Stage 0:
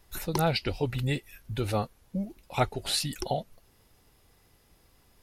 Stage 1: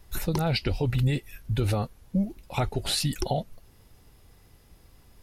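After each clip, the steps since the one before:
low-shelf EQ 210 Hz +7.5 dB
brickwall limiter −18.5 dBFS, peak gain reduction 9 dB
level +2.5 dB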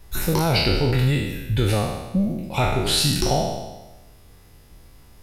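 peak hold with a decay on every bin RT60 1.12 s
level +3.5 dB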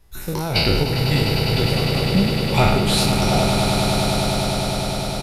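sample-and-hold tremolo 3.6 Hz, depth 75%
downsampling to 32,000 Hz
echo that builds up and dies away 101 ms, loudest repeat 8, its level −9 dB
level +4.5 dB

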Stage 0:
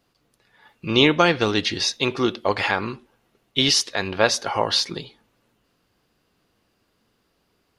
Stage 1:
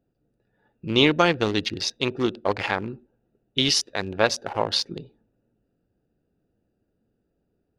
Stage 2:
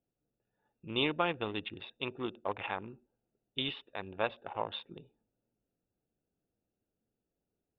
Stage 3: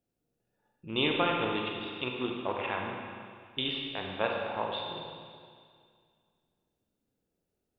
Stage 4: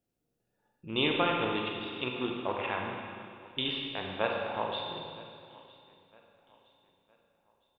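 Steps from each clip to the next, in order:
adaptive Wiener filter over 41 samples; level −1.5 dB
Chebyshev low-pass with heavy ripple 3,700 Hz, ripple 6 dB; level −9 dB
convolution reverb RT60 2.1 s, pre-delay 32 ms, DRR 0 dB; level +1.5 dB
repeating echo 962 ms, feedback 39%, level −22 dB

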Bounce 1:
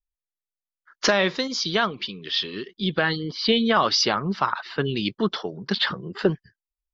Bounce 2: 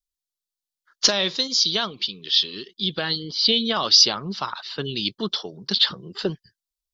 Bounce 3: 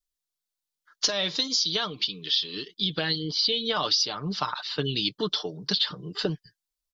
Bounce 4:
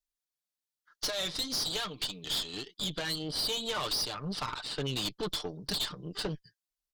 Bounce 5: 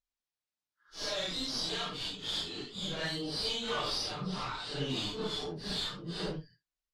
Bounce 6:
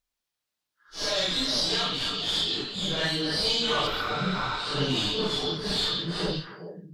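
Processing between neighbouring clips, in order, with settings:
high shelf with overshoot 2,800 Hz +10 dB, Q 1.5; level −4.5 dB
comb filter 6.7 ms, depth 49%; downward compressor 6 to 1, threshold −22 dBFS, peak gain reduction 12.5 dB
tube saturation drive 28 dB, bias 0.8
random phases in long frames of 200 ms; high-frequency loss of the air 69 metres
healed spectral selection 0:03.90–0:04.49, 1,200–11,000 Hz after; echo through a band-pass that steps 135 ms, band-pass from 3,700 Hz, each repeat −1.4 octaves, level −2 dB; level +7.5 dB

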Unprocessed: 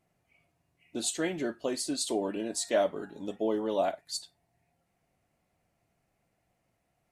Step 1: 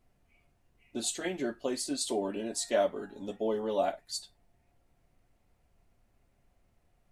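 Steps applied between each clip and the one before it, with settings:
notch comb filter 160 Hz
background noise brown −68 dBFS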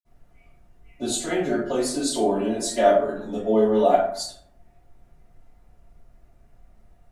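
low-shelf EQ 110 Hz +11.5 dB
convolution reverb RT60 0.65 s, pre-delay 48 ms

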